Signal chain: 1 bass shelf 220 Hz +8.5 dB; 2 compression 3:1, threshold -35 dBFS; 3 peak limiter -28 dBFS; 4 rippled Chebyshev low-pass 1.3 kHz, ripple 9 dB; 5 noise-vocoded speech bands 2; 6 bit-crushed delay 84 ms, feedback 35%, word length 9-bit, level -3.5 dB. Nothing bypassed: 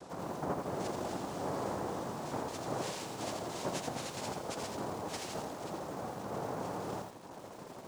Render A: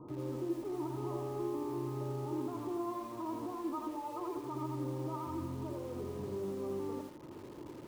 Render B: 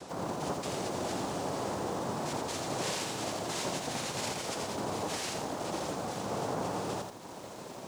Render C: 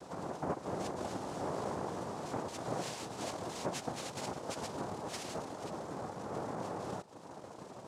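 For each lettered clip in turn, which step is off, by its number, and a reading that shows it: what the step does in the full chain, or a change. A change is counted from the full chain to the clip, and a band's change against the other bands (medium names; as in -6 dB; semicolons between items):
5, 8 kHz band -11.5 dB; 4, 4 kHz band +4.5 dB; 6, loudness change -1.5 LU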